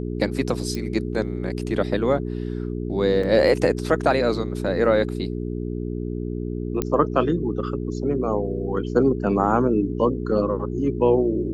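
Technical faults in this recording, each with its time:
hum 60 Hz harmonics 7 -28 dBFS
0.75 s: pop -17 dBFS
3.23 s: dropout 4.4 ms
6.82 s: pop -9 dBFS

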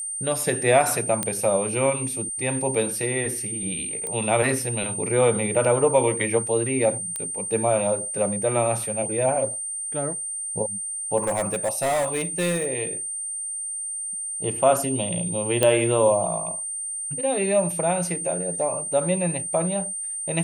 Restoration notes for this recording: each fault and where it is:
whine 8.8 kHz -28 dBFS
1.23 s: pop -8 dBFS
4.07 s: pop -17 dBFS
7.16 s: pop -14 dBFS
11.17–12.67 s: clipped -20 dBFS
15.63 s: pop -5 dBFS

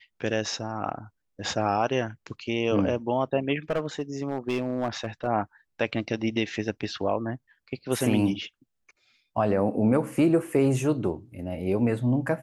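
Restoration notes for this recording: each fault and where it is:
3.70–5.27 s: clipped -21 dBFS

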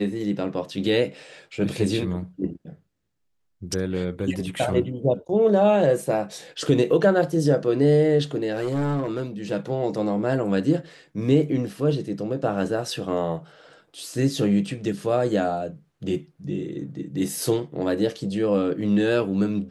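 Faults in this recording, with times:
8.52–9.22 s: clipped -20.5 dBFS

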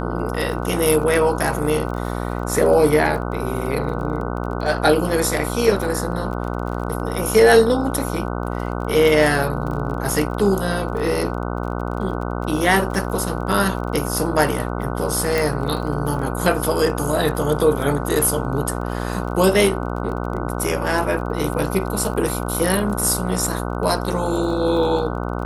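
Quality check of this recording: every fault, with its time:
buzz 60 Hz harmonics 25 -25 dBFS
crackle 30 per s -29 dBFS
15.38 s: pop

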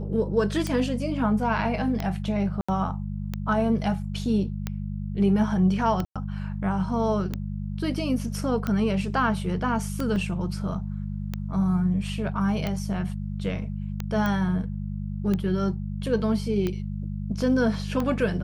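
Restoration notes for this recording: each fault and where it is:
hum 50 Hz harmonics 4 -31 dBFS
tick 45 rpm -15 dBFS
2.61–2.69 s: dropout 75 ms
6.05–6.16 s: dropout 106 ms
10.16 s: dropout 2.4 ms
14.26 s: pop -15 dBFS

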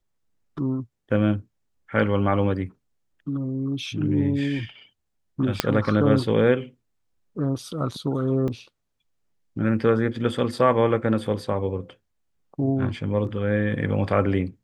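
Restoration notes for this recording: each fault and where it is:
5.60 s: pop -3 dBFS
8.48 s: dropout 2.5 ms

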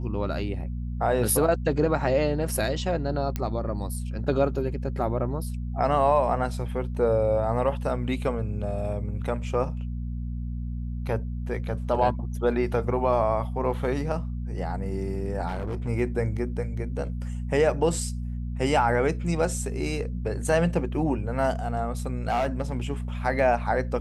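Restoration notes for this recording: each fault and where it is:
hum 60 Hz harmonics 4 -31 dBFS
3.36 s: pop -14 dBFS
15.48–15.89 s: clipped -26.5 dBFS
22.30–22.77 s: clipped -20.5 dBFS

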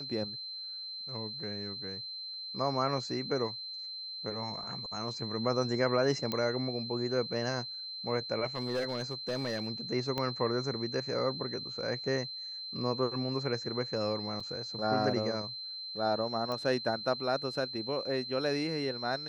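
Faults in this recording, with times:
whine 4.1 kHz -39 dBFS
6.32 s: pop -18 dBFS
8.46–9.67 s: clipped -28 dBFS
10.18 s: pop -19 dBFS
14.40 s: dropout 4.8 ms
16.52 s: pop -23 dBFS

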